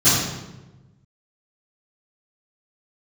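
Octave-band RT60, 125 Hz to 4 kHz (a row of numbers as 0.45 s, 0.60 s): 1.7 s, 1.5 s, 1.2 s, 0.95 s, 0.85 s, 0.75 s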